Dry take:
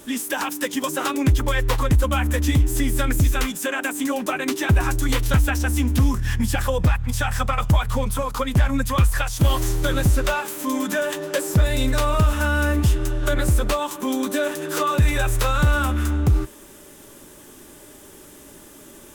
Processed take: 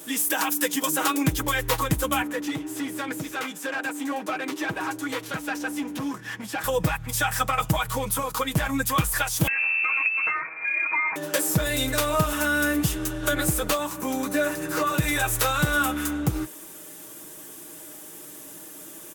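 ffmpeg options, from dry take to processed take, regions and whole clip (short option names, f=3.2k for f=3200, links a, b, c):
-filter_complex "[0:a]asettb=1/sr,asplit=3[a][b][c];[a]atrim=end=2.224[d];[b]atrim=start=2.22:end=6.64,asetpts=PTS-STARTPTS,afade=t=in:d=0.004:c=qsin,afade=t=out:st=4.416:d=0.004:c=qsin,highpass=250,asoftclip=type=hard:threshold=-22.5dB,aemphasis=mode=reproduction:type=75kf[e];[c]atrim=start=6.636[f];[d][e]acrossfade=d=0.004:c1=hsin:c2=qsin[g];[g][f]acrossfade=d=0.004:c1=qsin:c2=hsin,asettb=1/sr,asplit=3[h][i][j];[h]atrim=end=9.474[k];[i]atrim=start=9.47:end=11.16,asetpts=PTS-STARTPTS,afade=t=in:d=0.004:c=qsin,afade=t=out:st=1.686:d=0.004:c=qsin,lowpass=f=2.3k:t=q:w=0.5098,lowpass=f=2.3k:t=q:w=0.6013,lowpass=f=2.3k:t=q:w=0.9,lowpass=f=2.3k:t=q:w=2.563,afreqshift=-2700,acompressor=threshold=-20dB:ratio=6:attack=3.2:release=140:knee=1:detection=peak[l];[j]atrim=start=11.156[m];[k][l]acrossfade=d=0.004:c1=hsin:c2=qsin[n];[n][m]acrossfade=d=0.004:c1=qsin:c2=hsin,asettb=1/sr,asplit=3[o][p][q];[o]atrim=end=13.784[r];[p]atrim=start=13.78:end=14.94,asetpts=PTS-STARTPTS,afade=t=in:d=0.004:c=qsin,afade=t=out:st=1.156:d=0.004:c=qsin,acrossover=split=4700[s][t];[t]acompressor=threshold=-39dB:ratio=4:attack=1:release=60[u];[s][u]amix=inputs=2:normalize=0,equalizer=f=3.3k:w=4.4:g=-9.5,aeval=exprs='val(0)+0.0158*(sin(2*PI*60*n/s)+sin(2*PI*2*60*n/s)/2+sin(2*PI*3*60*n/s)/3+sin(2*PI*4*60*n/s)/4+sin(2*PI*5*60*n/s)/5)':c=same[v];[q]atrim=start=14.936[w];[r][v]acrossfade=d=0.004:c1=hsin:c2=qsin[x];[x][w]acrossfade=d=0.004:c1=qsin:c2=hsin,highpass=f=200:p=1,highshelf=f=9.7k:g=10.5,aecho=1:1:6.3:0.6,volume=-1.5dB"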